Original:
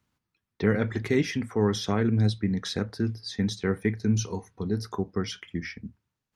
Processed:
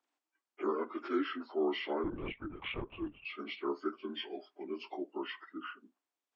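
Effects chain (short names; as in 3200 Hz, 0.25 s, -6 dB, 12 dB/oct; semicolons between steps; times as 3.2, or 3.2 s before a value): inharmonic rescaling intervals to 80%; elliptic high-pass 290 Hz, stop band 60 dB; 2.04–3.25 LPC vocoder at 8 kHz whisper; gain -4 dB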